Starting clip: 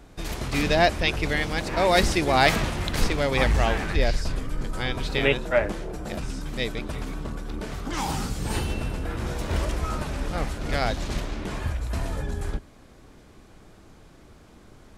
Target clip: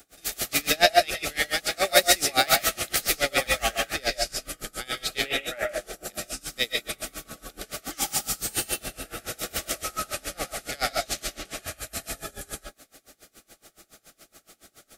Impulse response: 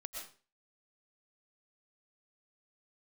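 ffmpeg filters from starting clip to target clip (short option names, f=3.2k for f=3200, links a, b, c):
-filter_complex "[0:a]asuperstop=centerf=980:order=20:qfactor=4.3,aemphasis=mode=production:type=riaa,acrossover=split=530|2300[a][b][c];[c]asoftclip=type=tanh:threshold=-12dB[d];[a][b][d]amix=inputs=3:normalize=0[e];[1:a]atrim=start_sample=2205,afade=t=out:st=0.2:d=0.01,atrim=end_sample=9261[f];[e][f]afir=irnorm=-1:irlink=0,aeval=exprs='val(0)*pow(10,-26*(0.5-0.5*cos(2*PI*7.1*n/s))/20)':c=same,volume=7dB"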